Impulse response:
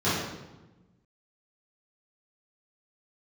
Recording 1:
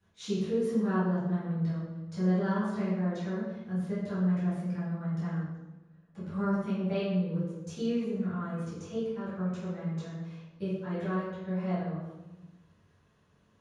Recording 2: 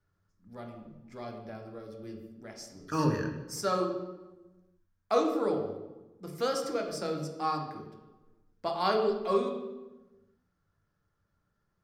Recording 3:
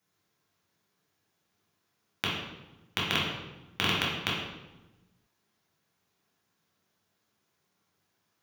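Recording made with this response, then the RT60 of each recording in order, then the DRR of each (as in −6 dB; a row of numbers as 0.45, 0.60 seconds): 1; 1.1, 1.1, 1.1 seconds; −13.0, 2.5, −5.5 decibels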